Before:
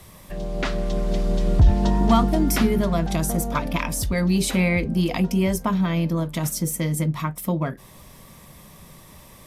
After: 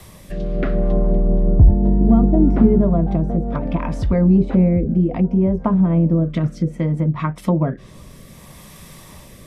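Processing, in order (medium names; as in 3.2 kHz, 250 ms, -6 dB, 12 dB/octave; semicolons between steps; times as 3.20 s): low-pass that closes with the level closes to 580 Hz, closed at -18 dBFS; rotary cabinet horn 0.65 Hz; trim +7.5 dB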